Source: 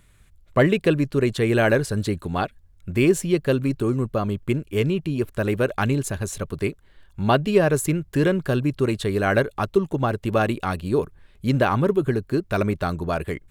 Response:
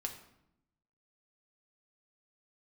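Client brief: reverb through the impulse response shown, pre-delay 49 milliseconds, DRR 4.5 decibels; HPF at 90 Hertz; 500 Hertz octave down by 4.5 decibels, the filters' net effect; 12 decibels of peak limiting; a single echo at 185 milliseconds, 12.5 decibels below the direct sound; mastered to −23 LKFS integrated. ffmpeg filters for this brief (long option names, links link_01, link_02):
-filter_complex "[0:a]highpass=90,equalizer=frequency=500:width_type=o:gain=-6,alimiter=limit=-19dB:level=0:latency=1,aecho=1:1:185:0.237,asplit=2[link_01][link_02];[1:a]atrim=start_sample=2205,adelay=49[link_03];[link_02][link_03]afir=irnorm=-1:irlink=0,volume=-4dB[link_04];[link_01][link_04]amix=inputs=2:normalize=0,volume=4.5dB"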